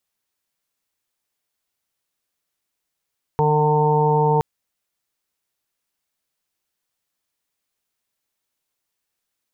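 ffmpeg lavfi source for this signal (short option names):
-f lavfi -i "aevalsrc='0.112*sin(2*PI*151*t)+0.02*sin(2*PI*302*t)+0.112*sin(2*PI*453*t)+0.0126*sin(2*PI*604*t)+0.0501*sin(2*PI*755*t)+0.112*sin(2*PI*906*t)+0.0126*sin(2*PI*1057*t)':d=1.02:s=44100"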